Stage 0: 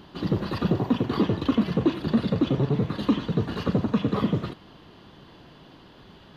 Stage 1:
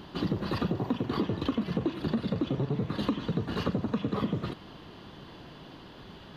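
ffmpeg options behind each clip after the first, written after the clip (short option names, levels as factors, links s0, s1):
-af "acompressor=threshold=0.0398:ratio=6,volume=1.26"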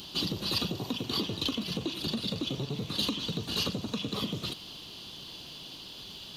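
-af "aexciter=amount=8.7:drive=5.1:freq=2700,volume=0.562"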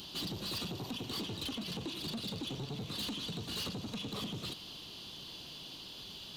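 -af "asoftclip=type=tanh:threshold=0.0237,volume=0.75"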